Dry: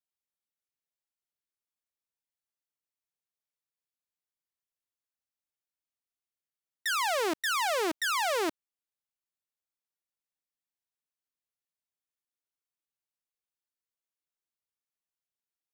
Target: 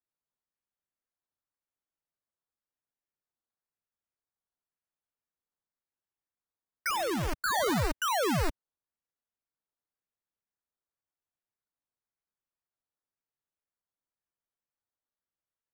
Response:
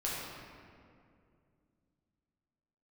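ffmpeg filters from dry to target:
-filter_complex "[0:a]highpass=f=250:t=q:w=0.5412,highpass=f=250:t=q:w=1.307,lowpass=f=2.3k:t=q:w=0.5176,lowpass=f=2.3k:t=q:w=0.7071,lowpass=f=2.3k:t=q:w=1.932,afreqshift=-340,acrusher=samples=13:mix=1:aa=0.000001:lfo=1:lforange=7.8:lforate=0.95,asplit=3[a][b][c];[a]afade=t=out:st=6.89:d=0.02[d];[b]asoftclip=type=hard:threshold=-30.5dB,afade=t=in:st=6.89:d=0.02,afade=t=out:st=7.39:d=0.02[e];[c]afade=t=in:st=7.39:d=0.02[f];[d][e][f]amix=inputs=3:normalize=0,volume=2dB"

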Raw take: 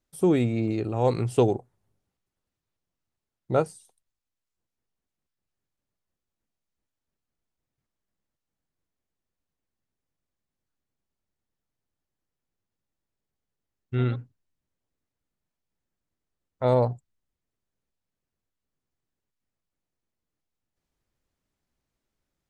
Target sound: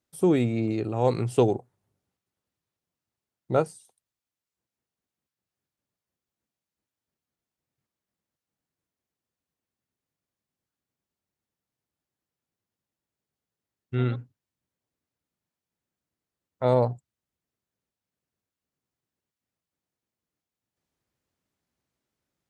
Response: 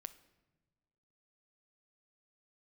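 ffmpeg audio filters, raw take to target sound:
-af "highpass=84"

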